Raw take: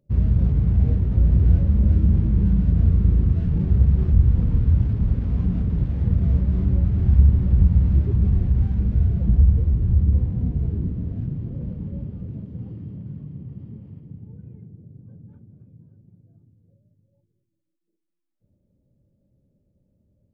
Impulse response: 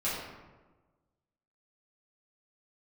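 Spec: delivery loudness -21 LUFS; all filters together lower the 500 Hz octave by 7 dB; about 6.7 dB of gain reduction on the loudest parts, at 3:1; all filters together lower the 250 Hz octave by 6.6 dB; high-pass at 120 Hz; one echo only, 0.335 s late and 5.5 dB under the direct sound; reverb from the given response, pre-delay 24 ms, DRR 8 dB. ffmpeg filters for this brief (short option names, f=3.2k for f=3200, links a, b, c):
-filter_complex "[0:a]highpass=120,equalizer=f=250:t=o:g=-9,equalizer=f=500:t=o:g=-5.5,acompressor=threshold=-28dB:ratio=3,aecho=1:1:335:0.531,asplit=2[a][b];[1:a]atrim=start_sample=2205,adelay=24[c];[b][c]afir=irnorm=-1:irlink=0,volume=-15.5dB[d];[a][d]amix=inputs=2:normalize=0,volume=10.5dB"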